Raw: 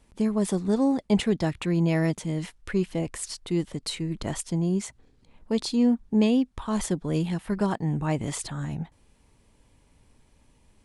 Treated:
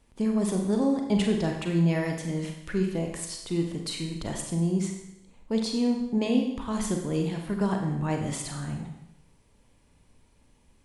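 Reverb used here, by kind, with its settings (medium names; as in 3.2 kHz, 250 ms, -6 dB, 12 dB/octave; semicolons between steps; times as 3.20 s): Schroeder reverb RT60 0.83 s, combs from 32 ms, DRR 2.5 dB; trim -3 dB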